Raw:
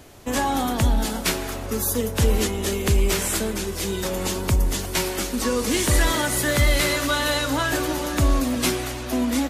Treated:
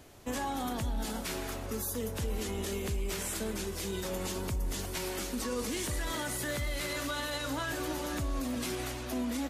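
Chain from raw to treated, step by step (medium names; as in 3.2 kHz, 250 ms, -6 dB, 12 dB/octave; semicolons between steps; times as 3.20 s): peak limiter -18 dBFS, peak gain reduction 9.5 dB; trim -8 dB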